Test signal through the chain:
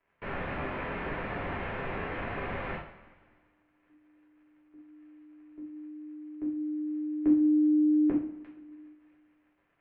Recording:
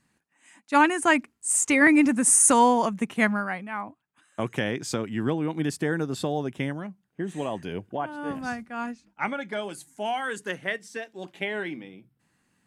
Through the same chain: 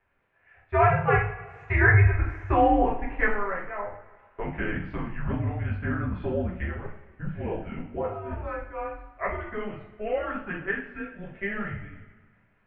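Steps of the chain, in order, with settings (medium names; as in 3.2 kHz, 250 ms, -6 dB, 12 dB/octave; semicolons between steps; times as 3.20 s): crackle 140 per s -47 dBFS; two-slope reverb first 0.46 s, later 1.8 s, from -17 dB, DRR -6.5 dB; mistuned SSB -200 Hz 170–2600 Hz; trim -7.5 dB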